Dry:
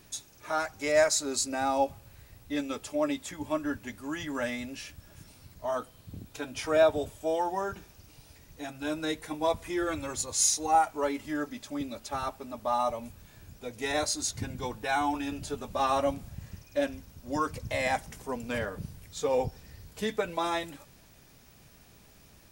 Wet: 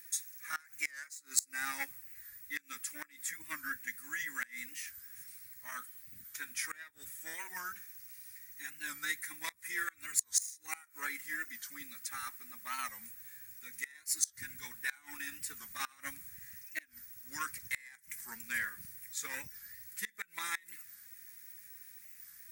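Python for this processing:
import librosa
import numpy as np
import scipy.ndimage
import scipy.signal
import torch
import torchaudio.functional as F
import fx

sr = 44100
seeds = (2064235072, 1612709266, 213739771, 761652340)

y = fx.cheby_harmonics(x, sr, harmonics=(3, 7), levels_db=(-16, -33), full_scale_db=-10.5)
y = fx.curve_eq(y, sr, hz=(240.0, 620.0, 1900.0, 2900.0, 13000.0), db=(0, -21, 11, -10, 0))
y = fx.gate_flip(y, sr, shuts_db=-27.0, range_db=-25)
y = librosa.effects.preemphasis(y, coef=0.97, zi=[0.0])
y = fx.record_warp(y, sr, rpm=45.0, depth_cents=160.0)
y = y * 10.0 ** (15.5 / 20.0)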